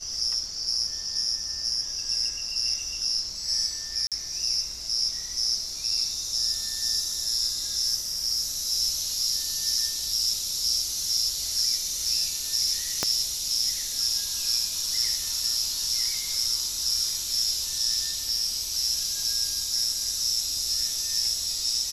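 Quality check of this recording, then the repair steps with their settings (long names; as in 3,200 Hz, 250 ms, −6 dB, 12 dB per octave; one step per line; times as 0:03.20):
0:04.07–0:04.12: drop-out 47 ms
0:13.03: click −9 dBFS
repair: click removal
repair the gap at 0:04.07, 47 ms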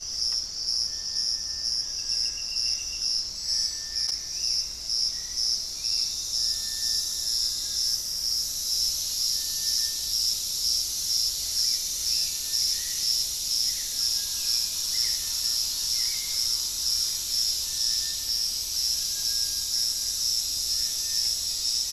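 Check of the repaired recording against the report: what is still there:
0:13.03: click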